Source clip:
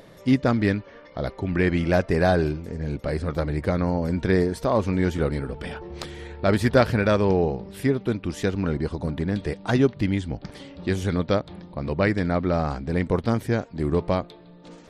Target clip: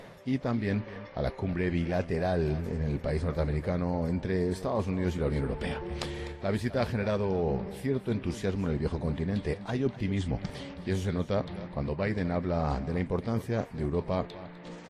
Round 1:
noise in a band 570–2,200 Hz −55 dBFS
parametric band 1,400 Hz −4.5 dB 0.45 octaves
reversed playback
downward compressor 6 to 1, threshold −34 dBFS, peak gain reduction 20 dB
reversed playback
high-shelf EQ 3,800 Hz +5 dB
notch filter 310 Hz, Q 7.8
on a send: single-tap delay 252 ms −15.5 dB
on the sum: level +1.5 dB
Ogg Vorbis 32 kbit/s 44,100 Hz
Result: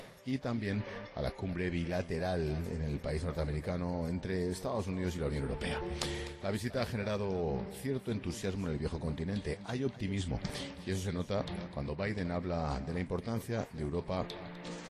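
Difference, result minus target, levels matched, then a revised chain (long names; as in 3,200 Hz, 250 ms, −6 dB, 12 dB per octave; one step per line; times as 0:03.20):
8,000 Hz band +8.0 dB; downward compressor: peak gain reduction +6 dB
noise in a band 570–2,200 Hz −55 dBFS
parametric band 1,400 Hz −4.5 dB 0.45 octaves
reversed playback
downward compressor 6 to 1, threshold −27 dBFS, peak gain reduction 14 dB
reversed playback
high-shelf EQ 3,800 Hz −4.5 dB
notch filter 310 Hz, Q 7.8
on a send: single-tap delay 252 ms −15.5 dB
on the sum: level +1.5 dB
Ogg Vorbis 32 kbit/s 44,100 Hz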